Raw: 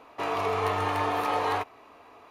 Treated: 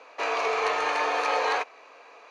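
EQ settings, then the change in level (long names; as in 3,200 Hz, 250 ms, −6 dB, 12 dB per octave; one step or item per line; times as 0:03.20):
loudspeaker in its box 470–8,500 Hz, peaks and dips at 510 Hz +9 dB, 1,600 Hz +6 dB, 2,400 Hz +8 dB, 4,400 Hz +8 dB, 6,300 Hz +9 dB
0.0 dB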